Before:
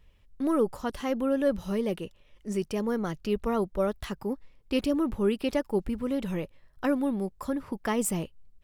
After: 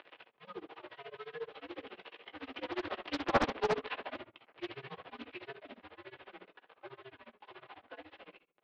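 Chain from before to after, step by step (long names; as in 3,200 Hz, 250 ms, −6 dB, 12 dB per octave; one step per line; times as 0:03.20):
linear delta modulator 32 kbit/s, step −27 dBFS
source passing by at 0:03.40, 19 m/s, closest 6.9 metres
rectangular room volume 280 cubic metres, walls furnished, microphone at 1.7 metres
amplitude tremolo 14 Hz, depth 96%
upward compression, threshold −39 dBFS
single-sideband voice off tune −140 Hz 550–3,500 Hz
highs frequency-modulated by the lows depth 0.78 ms
level +2.5 dB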